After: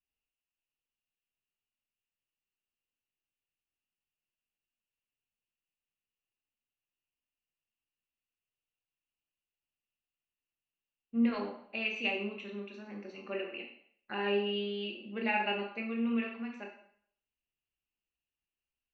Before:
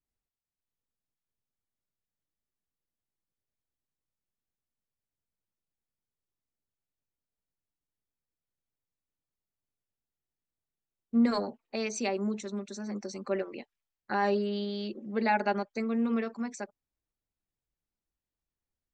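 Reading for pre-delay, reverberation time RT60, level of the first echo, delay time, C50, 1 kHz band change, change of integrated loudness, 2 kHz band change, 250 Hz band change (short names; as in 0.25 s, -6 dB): 16 ms, 0.60 s, none, none, 5.0 dB, -6.5 dB, -3.0 dB, +1.0 dB, -4.5 dB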